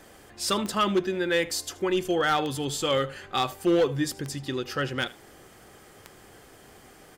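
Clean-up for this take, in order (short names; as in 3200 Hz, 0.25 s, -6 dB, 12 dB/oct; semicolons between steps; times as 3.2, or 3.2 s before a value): clip repair -17 dBFS; de-click; inverse comb 78 ms -20.5 dB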